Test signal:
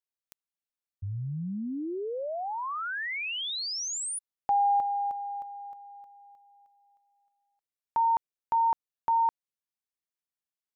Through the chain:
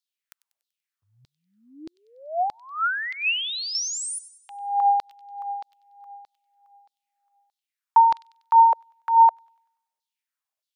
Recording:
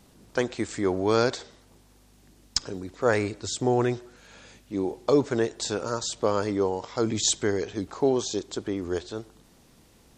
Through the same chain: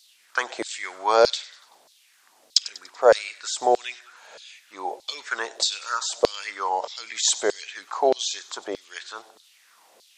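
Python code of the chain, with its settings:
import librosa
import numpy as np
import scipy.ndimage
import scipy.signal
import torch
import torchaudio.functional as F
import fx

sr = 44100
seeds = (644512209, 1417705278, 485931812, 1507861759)

y = fx.filter_lfo_highpass(x, sr, shape='saw_down', hz=1.6, low_hz=520.0, high_hz=4400.0, q=3.3)
y = fx.echo_wet_highpass(y, sr, ms=96, feedback_pct=47, hz=3000.0, wet_db=-15.5)
y = y * librosa.db_to_amplitude(2.5)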